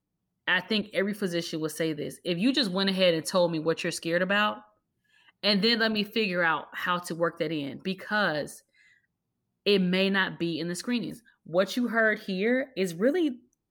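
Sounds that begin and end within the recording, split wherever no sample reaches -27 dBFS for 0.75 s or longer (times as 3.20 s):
5.44–8.44 s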